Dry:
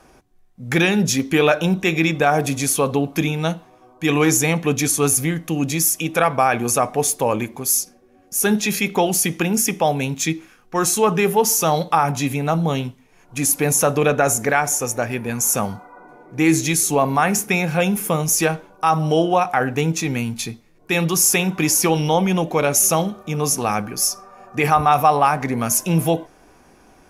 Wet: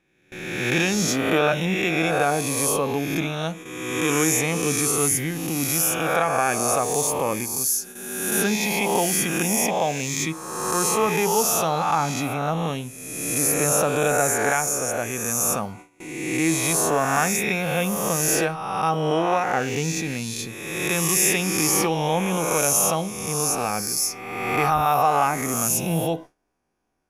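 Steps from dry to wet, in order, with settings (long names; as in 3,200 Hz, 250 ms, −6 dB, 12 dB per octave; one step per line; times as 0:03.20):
peak hold with a rise ahead of every peak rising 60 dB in 1.46 s
noise gate with hold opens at −21 dBFS
level −7.5 dB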